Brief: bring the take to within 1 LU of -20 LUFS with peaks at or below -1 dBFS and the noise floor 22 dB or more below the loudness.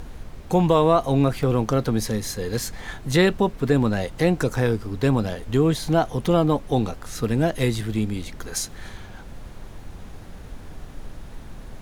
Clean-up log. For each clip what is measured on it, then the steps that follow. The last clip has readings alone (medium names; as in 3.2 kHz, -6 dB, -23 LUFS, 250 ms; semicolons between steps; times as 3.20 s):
dropouts 2; longest dropout 1.4 ms; noise floor -40 dBFS; noise floor target -45 dBFS; loudness -22.5 LUFS; peak level -5.0 dBFS; loudness target -20.0 LUFS
-> interpolate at 1.43/4.50 s, 1.4 ms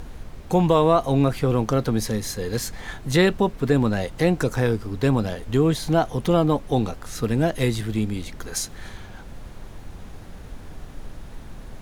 dropouts 0; noise floor -40 dBFS; noise floor target -45 dBFS
-> noise print and reduce 6 dB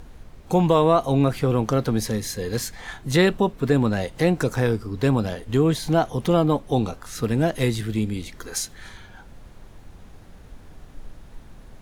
noise floor -46 dBFS; loudness -22.5 LUFS; peak level -5.5 dBFS; loudness target -20.0 LUFS
-> trim +2.5 dB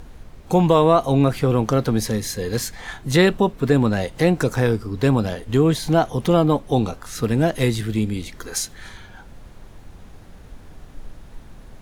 loudness -20.0 LUFS; peak level -3.0 dBFS; noise floor -43 dBFS